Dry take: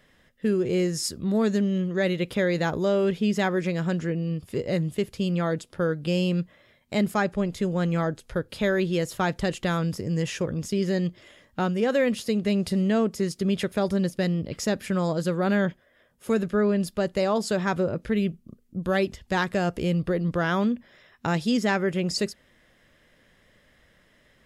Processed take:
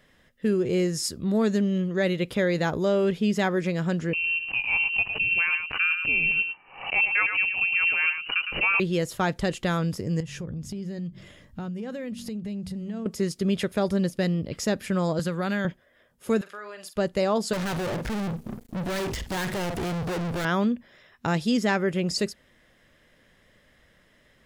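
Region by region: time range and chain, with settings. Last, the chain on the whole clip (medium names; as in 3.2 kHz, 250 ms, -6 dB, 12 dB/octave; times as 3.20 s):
4.13–8.80 s: delay 109 ms -7.5 dB + frequency inversion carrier 2.9 kHz + swell ahead of each attack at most 110 dB/s
10.20–13.06 s: tone controls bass +13 dB, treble +1 dB + de-hum 47.35 Hz, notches 6 + compression 4:1, threshold -34 dBFS
15.19–15.65 s: peaking EQ 390 Hz -8 dB 2.5 oct + three bands compressed up and down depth 100%
16.41–16.96 s: Chebyshev high-pass 1 kHz + compression 3:1, threshold -37 dBFS + doubling 47 ms -10 dB
17.53–20.45 s: hard clipper -29 dBFS + doubling 49 ms -14 dB + waveshaping leveller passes 5
whole clip: none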